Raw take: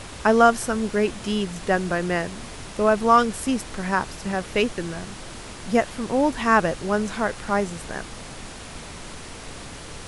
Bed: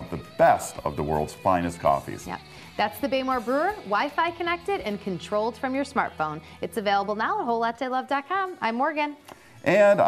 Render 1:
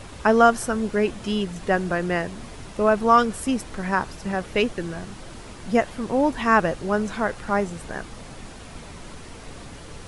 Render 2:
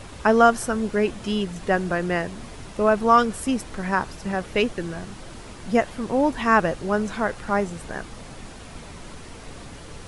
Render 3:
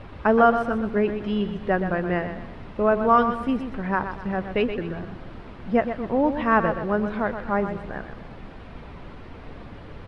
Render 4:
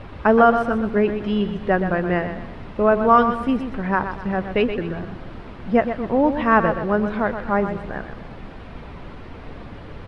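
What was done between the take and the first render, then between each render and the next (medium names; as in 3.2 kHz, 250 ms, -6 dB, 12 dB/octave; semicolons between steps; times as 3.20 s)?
noise reduction 6 dB, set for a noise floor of -39 dBFS
no audible change
distance through air 380 m; feedback delay 124 ms, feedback 38%, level -9 dB
trim +3.5 dB; peak limiter -3 dBFS, peak gain reduction 1.5 dB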